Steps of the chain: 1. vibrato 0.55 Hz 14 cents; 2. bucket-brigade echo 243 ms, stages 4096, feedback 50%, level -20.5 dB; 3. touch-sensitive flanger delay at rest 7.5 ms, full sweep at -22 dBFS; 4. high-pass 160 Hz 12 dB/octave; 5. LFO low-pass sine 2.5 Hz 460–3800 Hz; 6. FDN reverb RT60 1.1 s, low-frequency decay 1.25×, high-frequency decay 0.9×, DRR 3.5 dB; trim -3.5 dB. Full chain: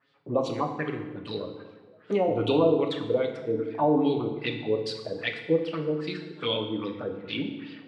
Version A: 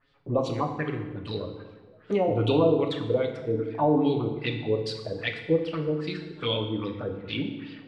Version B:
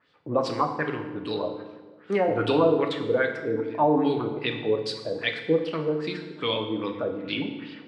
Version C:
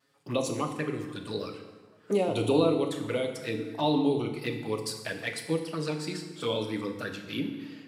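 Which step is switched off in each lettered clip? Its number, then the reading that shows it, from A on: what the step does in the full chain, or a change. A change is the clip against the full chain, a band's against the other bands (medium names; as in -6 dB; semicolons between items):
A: 4, 125 Hz band +5.0 dB; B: 3, 2 kHz band +4.0 dB; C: 5, momentary loudness spread change -2 LU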